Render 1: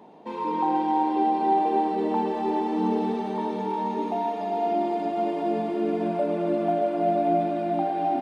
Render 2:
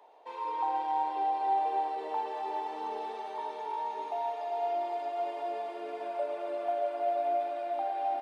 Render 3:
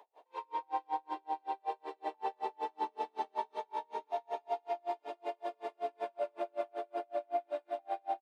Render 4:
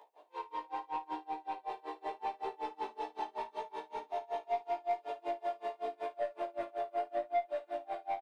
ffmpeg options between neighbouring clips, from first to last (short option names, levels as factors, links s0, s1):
-af "highpass=f=520:w=0.5412,highpass=f=520:w=1.3066,volume=0.531"
-af "alimiter=level_in=1.41:limit=0.0631:level=0:latency=1:release=45,volume=0.708,aecho=1:1:352:0.631,aeval=exprs='val(0)*pow(10,-40*(0.5-0.5*cos(2*PI*5.3*n/s))/20)':c=same,volume=1.33"
-filter_complex "[0:a]flanger=delay=15.5:depth=3.5:speed=0.8,aeval=exprs='(tanh(35.5*val(0)+0.05)-tanh(0.05))/35.5':c=same,asplit=2[s0][s1];[s1]aecho=0:1:20|55:0.473|0.2[s2];[s0][s2]amix=inputs=2:normalize=0,volume=1.5"